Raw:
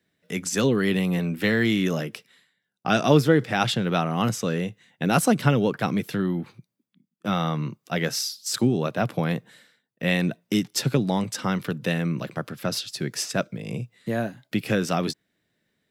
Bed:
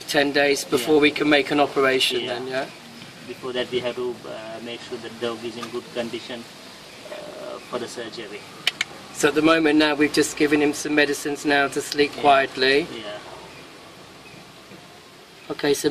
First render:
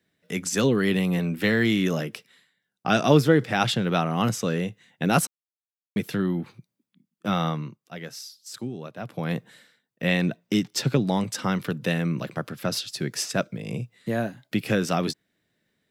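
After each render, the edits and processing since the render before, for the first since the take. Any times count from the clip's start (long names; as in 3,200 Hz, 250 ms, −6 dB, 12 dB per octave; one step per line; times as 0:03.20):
0:05.27–0:05.96: silence
0:07.48–0:09.37: duck −12 dB, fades 0.43 s quadratic
0:10.07–0:11.07: parametric band 11,000 Hz −7 dB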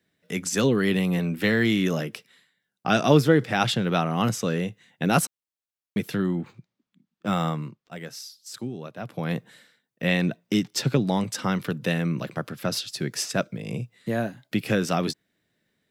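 0:06.24–0:08.06: linearly interpolated sample-rate reduction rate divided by 4×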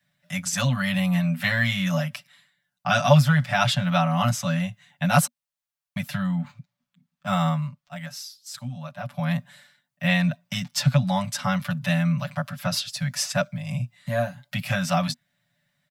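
Chebyshev band-stop filter 240–570 Hz, order 4
comb filter 6.9 ms, depth 96%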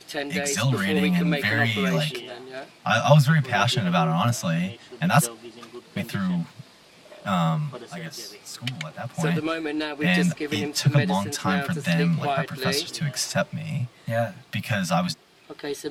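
mix in bed −10.5 dB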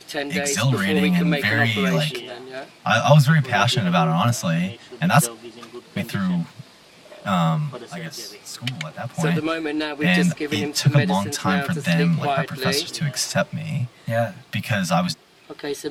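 level +3 dB
brickwall limiter −2 dBFS, peak gain reduction 1.5 dB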